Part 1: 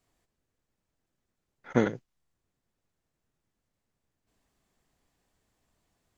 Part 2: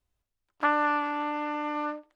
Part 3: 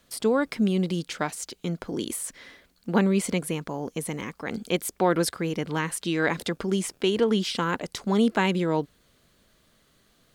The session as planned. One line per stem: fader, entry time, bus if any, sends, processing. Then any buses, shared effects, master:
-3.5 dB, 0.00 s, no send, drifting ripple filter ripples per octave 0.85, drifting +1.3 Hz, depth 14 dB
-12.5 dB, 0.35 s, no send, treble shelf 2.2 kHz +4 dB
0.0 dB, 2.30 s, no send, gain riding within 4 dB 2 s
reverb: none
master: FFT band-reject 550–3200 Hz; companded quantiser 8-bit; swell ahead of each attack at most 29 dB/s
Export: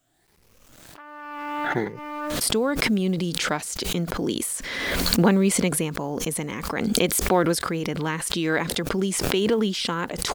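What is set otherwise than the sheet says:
stem 2 -12.5 dB -> -22.0 dB; master: missing FFT band-reject 550–3200 Hz

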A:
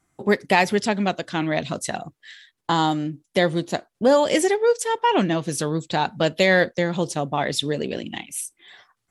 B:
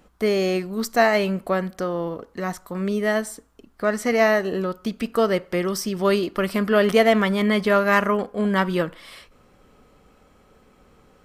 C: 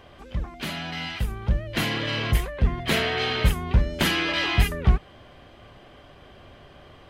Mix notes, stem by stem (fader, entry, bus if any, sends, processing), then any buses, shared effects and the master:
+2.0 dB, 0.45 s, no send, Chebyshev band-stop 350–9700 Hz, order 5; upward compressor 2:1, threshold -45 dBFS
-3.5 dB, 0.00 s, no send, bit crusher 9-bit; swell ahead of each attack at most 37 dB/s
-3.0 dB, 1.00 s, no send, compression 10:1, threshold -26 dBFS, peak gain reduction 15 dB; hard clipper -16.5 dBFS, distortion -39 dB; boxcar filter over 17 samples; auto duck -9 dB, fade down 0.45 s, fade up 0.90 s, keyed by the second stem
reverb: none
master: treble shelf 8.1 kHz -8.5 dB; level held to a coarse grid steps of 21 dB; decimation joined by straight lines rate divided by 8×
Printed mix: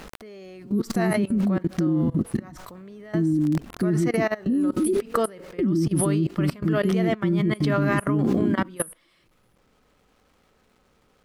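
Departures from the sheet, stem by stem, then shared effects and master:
stem A +2.0 dB -> +13.5 dB; master: missing decimation joined by straight lines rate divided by 8×

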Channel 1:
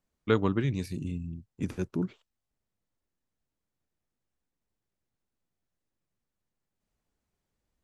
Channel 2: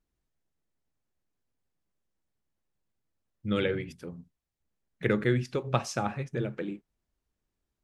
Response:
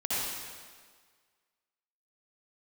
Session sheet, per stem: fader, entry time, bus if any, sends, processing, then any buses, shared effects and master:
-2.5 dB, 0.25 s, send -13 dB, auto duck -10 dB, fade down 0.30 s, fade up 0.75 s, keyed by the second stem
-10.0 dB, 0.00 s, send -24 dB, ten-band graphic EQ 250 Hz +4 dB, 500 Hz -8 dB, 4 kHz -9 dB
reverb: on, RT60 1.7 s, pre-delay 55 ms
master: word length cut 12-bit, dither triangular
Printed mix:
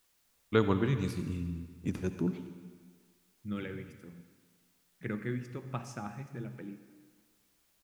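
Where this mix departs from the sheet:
stem 1: send -13 dB -> -22.5 dB; reverb return +7.0 dB

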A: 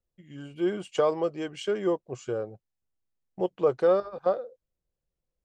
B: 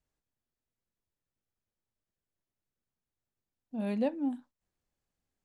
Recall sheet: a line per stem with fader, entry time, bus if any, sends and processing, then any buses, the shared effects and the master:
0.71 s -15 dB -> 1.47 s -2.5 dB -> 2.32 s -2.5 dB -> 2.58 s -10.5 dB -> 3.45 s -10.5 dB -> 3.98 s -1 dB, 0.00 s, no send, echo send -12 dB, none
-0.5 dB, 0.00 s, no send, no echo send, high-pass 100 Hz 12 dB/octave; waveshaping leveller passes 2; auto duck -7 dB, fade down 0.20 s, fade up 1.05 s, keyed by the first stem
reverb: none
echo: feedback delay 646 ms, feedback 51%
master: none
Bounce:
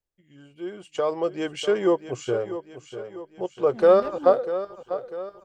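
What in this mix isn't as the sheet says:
stem A -15.0 dB -> -6.0 dB; master: extra peaking EQ 180 Hz -4.5 dB 1.1 oct

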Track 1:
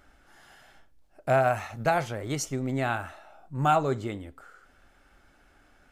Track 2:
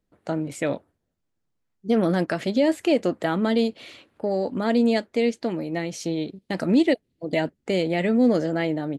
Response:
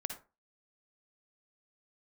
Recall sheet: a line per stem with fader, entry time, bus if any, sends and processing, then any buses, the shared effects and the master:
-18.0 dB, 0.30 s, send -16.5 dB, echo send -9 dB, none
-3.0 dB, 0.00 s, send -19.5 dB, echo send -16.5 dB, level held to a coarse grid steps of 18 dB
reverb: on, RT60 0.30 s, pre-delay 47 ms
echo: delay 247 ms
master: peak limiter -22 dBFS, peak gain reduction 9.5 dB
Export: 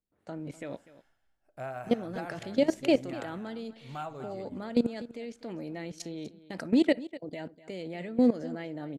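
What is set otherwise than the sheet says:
stem 1: send -16.5 dB -> -10.5 dB; master: missing peak limiter -22 dBFS, peak gain reduction 9.5 dB

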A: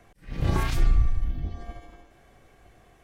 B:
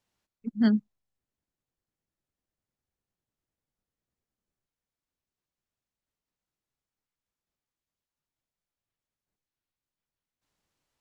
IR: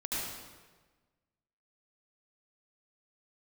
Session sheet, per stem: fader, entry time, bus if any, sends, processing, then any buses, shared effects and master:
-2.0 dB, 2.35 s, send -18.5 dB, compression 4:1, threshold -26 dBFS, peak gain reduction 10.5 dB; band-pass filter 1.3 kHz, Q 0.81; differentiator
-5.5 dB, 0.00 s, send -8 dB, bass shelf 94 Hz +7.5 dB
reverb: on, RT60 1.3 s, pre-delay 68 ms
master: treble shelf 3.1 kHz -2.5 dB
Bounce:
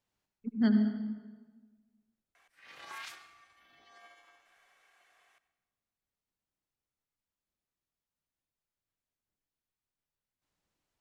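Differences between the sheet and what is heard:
stem A -2.0 dB -> +9.5 dB; stem B: missing bass shelf 94 Hz +7.5 dB

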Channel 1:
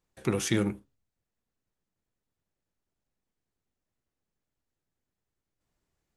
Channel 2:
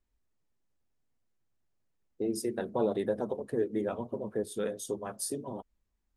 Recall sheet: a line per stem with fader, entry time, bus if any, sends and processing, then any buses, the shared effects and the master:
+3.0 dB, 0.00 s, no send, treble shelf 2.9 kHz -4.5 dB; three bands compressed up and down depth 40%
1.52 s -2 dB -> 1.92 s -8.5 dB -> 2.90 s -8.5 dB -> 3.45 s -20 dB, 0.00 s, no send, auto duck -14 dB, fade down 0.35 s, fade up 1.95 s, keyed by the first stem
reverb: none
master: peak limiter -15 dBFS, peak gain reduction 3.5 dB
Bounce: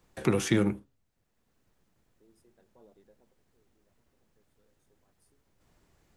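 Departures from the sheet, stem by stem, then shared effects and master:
stem 2 -2.0 dB -> -12.0 dB; master: missing peak limiter -15 dBFS, peak gain reduction 3.5 dB

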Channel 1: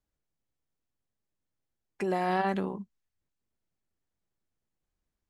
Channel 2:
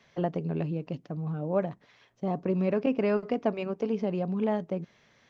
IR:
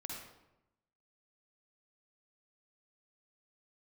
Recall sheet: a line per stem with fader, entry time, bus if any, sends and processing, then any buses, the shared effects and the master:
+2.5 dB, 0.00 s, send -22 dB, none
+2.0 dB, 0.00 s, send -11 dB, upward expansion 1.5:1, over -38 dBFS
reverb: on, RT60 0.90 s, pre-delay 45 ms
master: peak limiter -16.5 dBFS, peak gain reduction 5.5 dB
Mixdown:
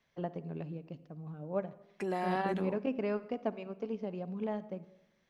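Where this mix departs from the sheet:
stem 1 +2.5 dB -> -5.5 dB; stem 2 +2.0 dB -> -7.5 dB

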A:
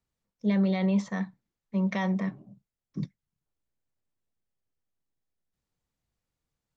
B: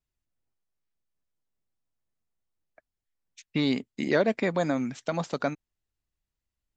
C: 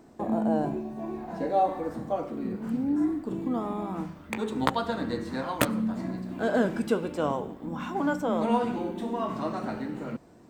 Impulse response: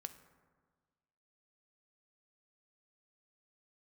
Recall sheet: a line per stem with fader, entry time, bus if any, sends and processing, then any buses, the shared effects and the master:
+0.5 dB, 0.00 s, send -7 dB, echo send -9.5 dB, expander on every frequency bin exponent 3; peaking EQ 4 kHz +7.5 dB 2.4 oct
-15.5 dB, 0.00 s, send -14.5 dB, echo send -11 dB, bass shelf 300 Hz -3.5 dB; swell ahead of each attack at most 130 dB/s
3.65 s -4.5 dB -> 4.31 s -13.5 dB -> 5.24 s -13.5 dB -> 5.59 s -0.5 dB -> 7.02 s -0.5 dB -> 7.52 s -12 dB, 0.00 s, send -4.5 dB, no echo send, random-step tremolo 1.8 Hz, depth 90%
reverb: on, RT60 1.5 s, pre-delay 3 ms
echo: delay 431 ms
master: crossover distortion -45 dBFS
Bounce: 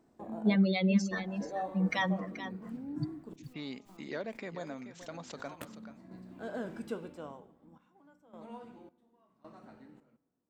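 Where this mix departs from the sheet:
stem C -4.5 dB -> -15.0 dB; master: missing crossover distortion -45 dBFS

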